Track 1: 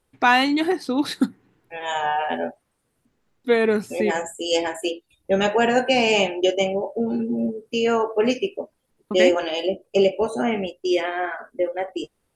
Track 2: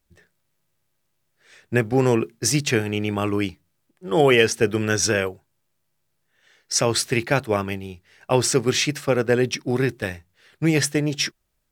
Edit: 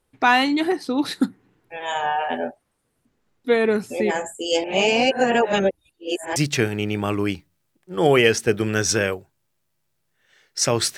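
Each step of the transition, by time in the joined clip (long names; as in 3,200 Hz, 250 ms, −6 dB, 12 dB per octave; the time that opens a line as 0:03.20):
track 1
0:04.64–0:06.36: reverse
0:06.36: continue with track 2 from 0:02.50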